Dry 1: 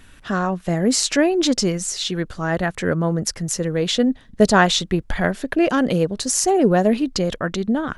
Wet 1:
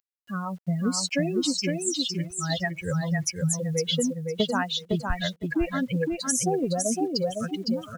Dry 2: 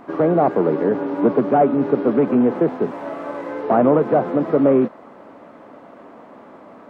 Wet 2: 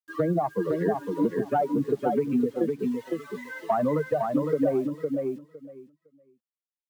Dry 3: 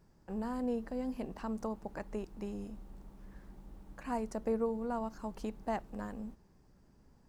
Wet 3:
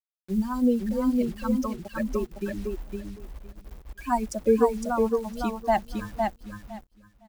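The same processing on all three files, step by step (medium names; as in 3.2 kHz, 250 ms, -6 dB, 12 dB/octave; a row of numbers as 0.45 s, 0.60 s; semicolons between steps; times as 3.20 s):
expander on every frequency bin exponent 3; dynamic bell 150 Hz, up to +4 dB, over -47 dBFS, Q 7.4; compression 10:1, threshold -31 dBFS; bit crusher 11-bit; on a send: feedback delay 509 ms, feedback 16%, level -4 dB; on the sum: normalise loudness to -27 LUFS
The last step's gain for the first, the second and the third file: +7.5 dB, +9.0 dB, +17.0 dB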